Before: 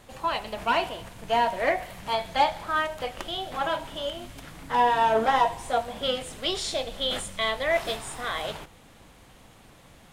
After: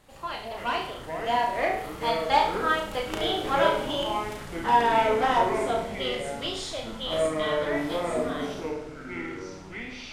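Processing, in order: Doppler pass-by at 3.51, 10 m/s, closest 14 m; flutter echo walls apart 5.9 m, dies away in 0.48 s; echoes that change speed 0.105 s, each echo -7 st, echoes 3, each echo -6 dB; gain +1.5 dB

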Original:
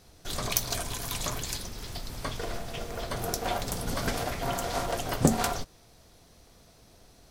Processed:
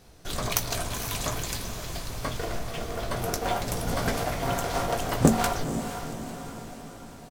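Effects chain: doubler 18 ms -11 dB; diffused feedback echo 0.489 s, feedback 57%, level -9.5 dB; in parallel at -9 dB: sample-rate reducer 6800 Hz

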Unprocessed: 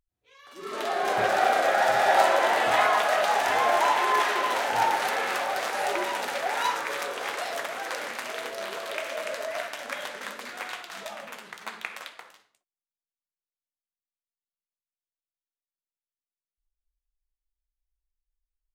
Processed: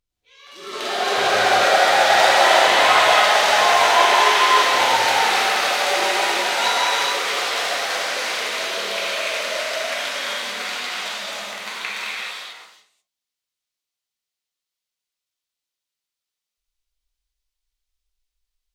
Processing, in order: bell 4200 Hz +10 dB 2.1 oct; notch 1700 Hz, Q 26; non-linear reverb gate 0.47 s flat, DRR -8 dB; gain -3 dB

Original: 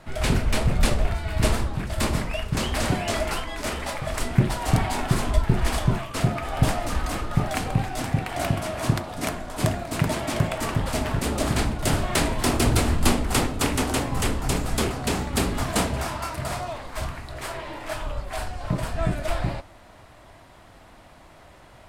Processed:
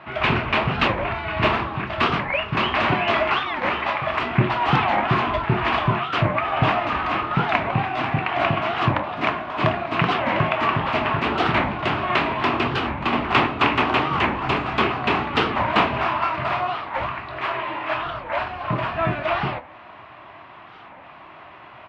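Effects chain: 11.75–13.13 compressor, threshold -21 dBFS, peak gain reduction 8 dB; speaker cabinet 170–3100 Hz, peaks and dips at 180 Hz -6 dB, 260 Hz -6 dB, 500 Hz -9 dB, 1100 Hz +7 dB, 2600 Hz +5 dB; doubler 25 ms -13.5 dB; record warp 45 rpm, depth 250 cents; gain +7 dB

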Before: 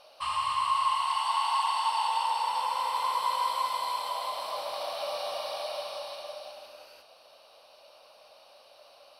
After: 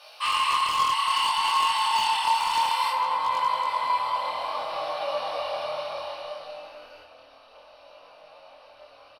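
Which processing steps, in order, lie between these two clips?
tilt +2.5 dB/oct, from 2.89 s -3 dB/oct; limiter -22 dBFS, peak gain reduction 7 dB; bell 1900 Hz +10.5 dB 2.4 oct; doubler 25 ms -4 dB; FDN reverb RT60 0.75 s, low-frequency decay 1.5×, high-frequency decay 0.85×, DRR 4.5 dB; wavefolder -14 dBFS; chorus 0.61 Hz, delay 18.5 ms, depth 7.4 ms

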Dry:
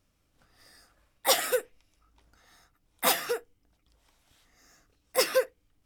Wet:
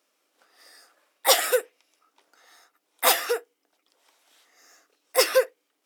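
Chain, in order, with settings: HPF 350 Hz 24 dB/oct; gain +5 dB

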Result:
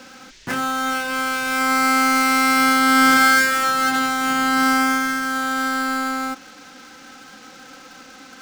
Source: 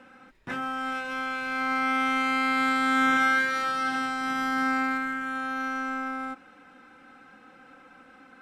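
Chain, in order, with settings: switching dead time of 0.095 ms; band noise 1600–6600 Hz -58 dBFS; gain +9 dB

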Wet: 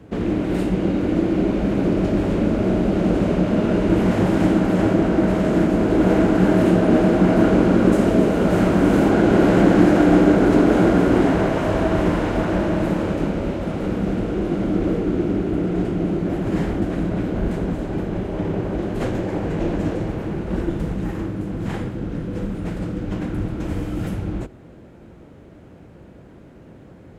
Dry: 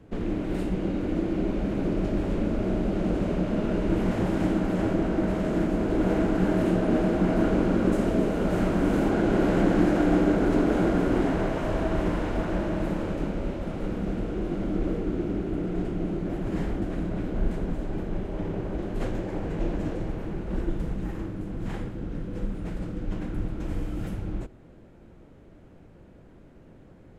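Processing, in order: HPF 57 Hz; gain +8 dB

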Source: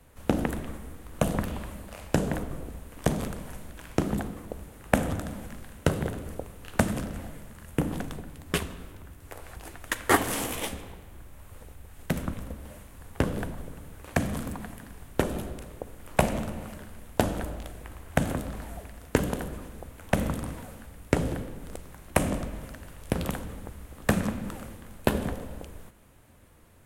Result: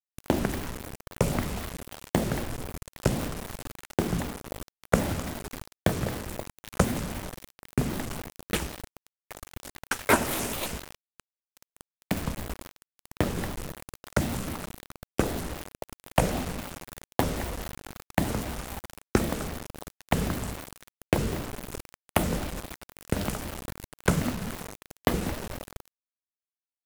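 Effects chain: bit-crush 6-bit; shaped vibrato square 3.8 Hz, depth 250 cents

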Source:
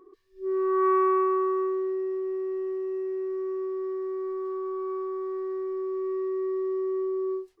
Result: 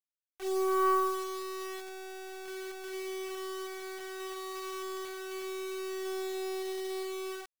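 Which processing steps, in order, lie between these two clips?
half-wave gain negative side -7 dB; 3.08–3.74 high shelf 2200 Hz +3.5 dB; echo 97 ms -23 dB; reverb removal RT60 1.9 s; echo 0.111 s -6.5 dB; bit-crush 7-bit; low shelf 220 Hz -8.5 dB

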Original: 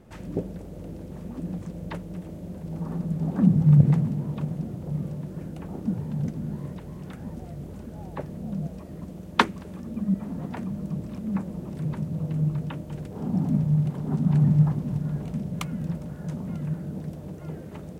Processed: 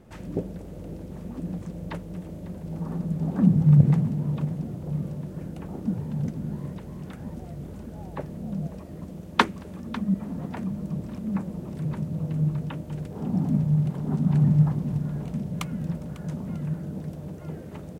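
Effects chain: echo 0.548 s -17.5 dB

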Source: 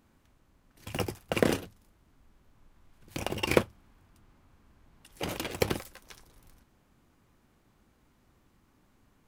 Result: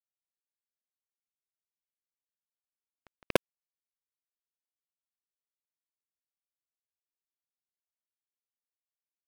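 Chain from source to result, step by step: Doppler pass-by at 3.68, 21 m/s, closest 4.1 m; notches 50/100/150/200/250/300/350/400/450 Hz; sample gate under -23.5 dBFS; low-pass opened by the level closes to 1700 Hz, open at -36 dBFS; gain +4.5 dB

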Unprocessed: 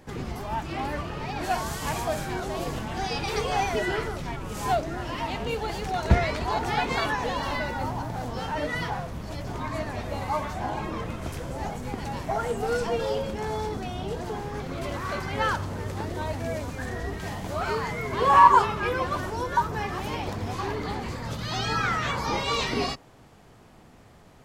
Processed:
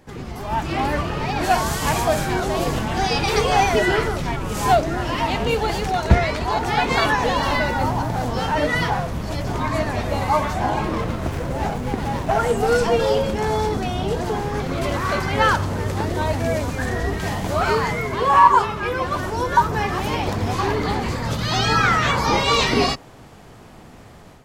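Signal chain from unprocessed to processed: AGC gain up to 9 dB; 10.83–12.39 running maximum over 9 samples

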